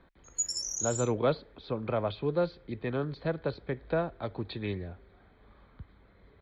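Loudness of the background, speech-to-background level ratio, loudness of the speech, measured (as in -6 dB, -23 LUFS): -33.0 LUFS, 0.0 dB, -33.0 LUFS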